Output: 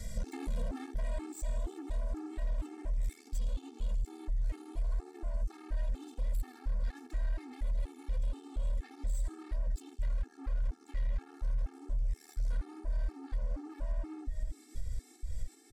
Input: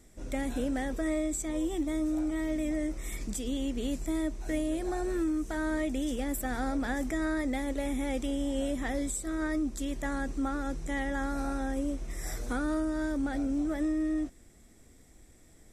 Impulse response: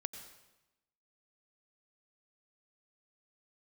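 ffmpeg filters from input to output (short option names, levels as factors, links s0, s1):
-filter_complex "[0:a]aresample=32000,aresample=44100,asplit=2[s0][s1];[1:a]atrim=start_sample=2205,lowshelf=f=180:g=10[s2];[s1][s2]afir=irnorm=-1:irlink=0,volume=1.68[s3];[s0][s3]amix=inputs=2:normalize=0,acrossover=split=220[s4][s5];[s5]acompressor=threshold=0.0282:ratio=3[s6];[s4][s6]amix=inputs=2:normalize=0,asoftclip=type=tanh:threshold=0.0282,asubboost=boost=5.5:cutoff=80,acompressor=threshold=0.0141:ratio=6,equalizer=f=4500:w=2.9:g=7,afftfilt=real='re*gt(sin(2*PI*2.1*pts/sr)*(1-2*mod(floor(b*sr/1024/230),2)),0)':imag='im*gt(sin(2*PI*2.1*pts/sr)*(1-2*mod(floor(b*sr/1024/230),2)),0)':win_size=1024:overlap=0.75,volume=2.11"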